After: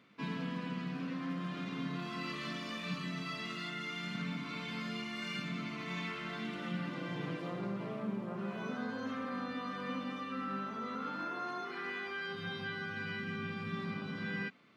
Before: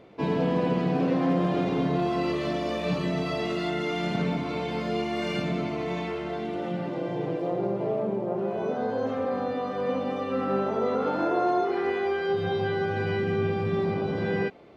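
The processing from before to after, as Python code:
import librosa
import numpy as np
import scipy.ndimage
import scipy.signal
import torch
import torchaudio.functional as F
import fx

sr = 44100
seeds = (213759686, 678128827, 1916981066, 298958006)

y = scipy.signal.sosfilt(scipy.signal.butter(2, 220.0, 'highpass', fs=sr, output='sos'), x)
y = fx.band_shelf(y, sr, hz=530.0, db=-16.0, octaves=1.7)
y = fx.rider(y, sr, range_db=10, speed_s=0.5)
y = F.gain(torch.from_numpy(y), -4.5).numpy()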